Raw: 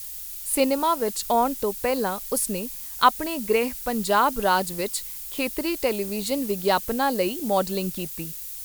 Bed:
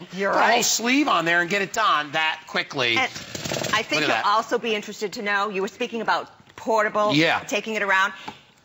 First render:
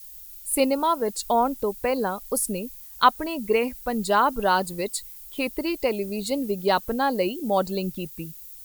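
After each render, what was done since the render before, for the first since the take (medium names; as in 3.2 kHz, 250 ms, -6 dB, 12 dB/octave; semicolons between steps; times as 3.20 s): noise reduction 11 dB, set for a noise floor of -36 dBFS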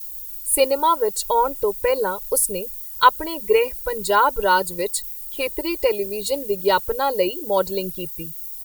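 treble shelf 10 kHz +7.5 dB; comb 2.1 ms, depth 96%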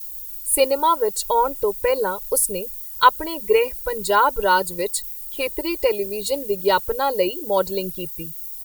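no audible change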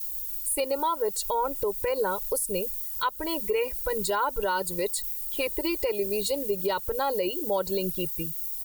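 compression 4:1, threshold -21 dBFS, peak gain reduction 11.5 dB; peak limiter -18 dBFS, peak gain reduction 8 dB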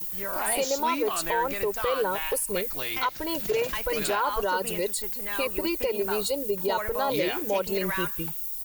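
add bed -12.5 dB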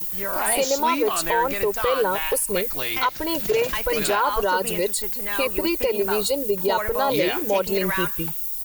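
trim +5 dB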